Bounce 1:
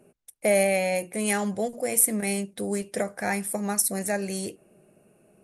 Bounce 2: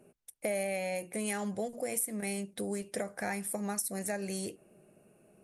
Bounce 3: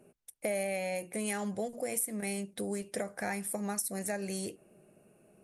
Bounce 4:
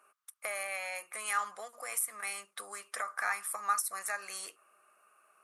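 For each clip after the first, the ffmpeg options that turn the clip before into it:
-af "acompressor=threshold=-30dB:ratio=3,volume=-3dB"
-af anull
-af "highpass=f=1.2k:t=q:w=9.7"

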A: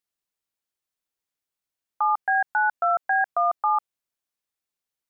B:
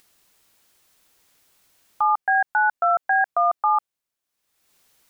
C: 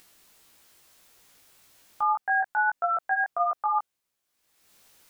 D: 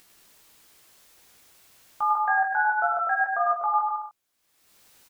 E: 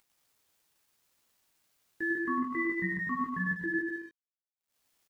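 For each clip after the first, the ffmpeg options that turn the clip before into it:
-af "acompressor=mode=upward:threshold=-45dB:ratio=2.5,volume=2.5dB"
-af "alimiter=limit=-22dB:level=0:latency=1:release=27,flanger=delay=16.5:depth=2.6:speed=1.7,volume=6.5dB"
-af "aecho=1:1:100|175|231.2|273.4|305.1:0.631|0.398|0.251|0.158|0.1"
-af "afftfilt=real='real(if(lt(b,1008),b+24*(1-2*mod(floor(b/24),2)),b),0)':imag='imag(if(lt(b,1008),b+24*(1-2*mod(floor(b/24),2)),b),0)':win_size=2048:overlap=0.75,aeval=exprs='sgn(val(0))*max(abs(val(0))-0.00141,0)':c=same,volume=-8dB"

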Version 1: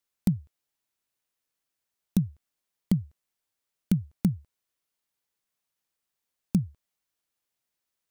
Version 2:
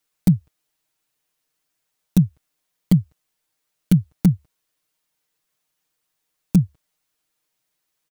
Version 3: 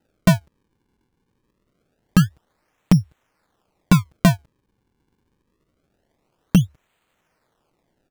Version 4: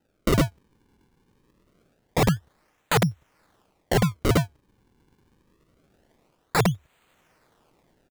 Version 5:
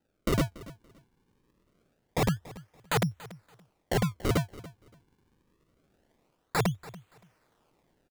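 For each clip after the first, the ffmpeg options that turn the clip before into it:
-af "aecho=1:1:6.5:0.92,volume=5.5dB"
-af "acompressor=threshold=-21dB:ratio=2,acrusher=samples=39:mix=1:aa=0.000001:lfo=1:lforange=62.4:lforate=0.25,volume=6.5dB"
-af "aecho=1:1:106:0.398,dynaudnorm=f=110:g=5:m=7dB,aeval=exprs='(mod(4.22*val(0)+1,2)-1)/4.22':c=same,volume=-1.5dB"
-af "aecho=1:1:285|570:0.112|0.0236,volume=-6dB"

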